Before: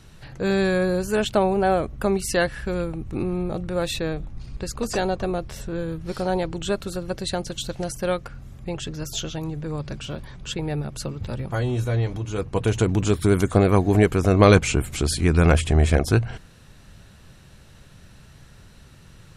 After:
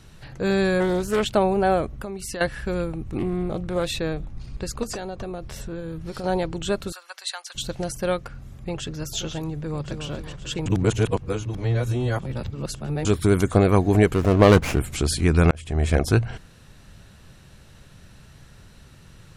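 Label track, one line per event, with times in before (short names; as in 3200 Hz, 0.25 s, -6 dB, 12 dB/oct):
0.800000	1.250000	Doppler distortion depth 0.25 ms
1.970000	2.410000	compressor 4:1, threshold -30 dBFS
3.180000	3.990000	Doppler distortion depth 0.24 ms
4.830000	6.240000	compressor 12:1, threshold -27 dBFS
6.920000	7.550000	HPF 970 Hz 24 dB/oct
8.160000	8.900000	echo throw 0.53 s, feedback 65%, level -11 dB
9.610000	10.050000	echo throw 0.27 s, feedback 50%, level -7.5 dB
10.660000	13.050000	reverse
14.140000	14.790000	running maximum over 9 samples
15.510000	16.010000	fade in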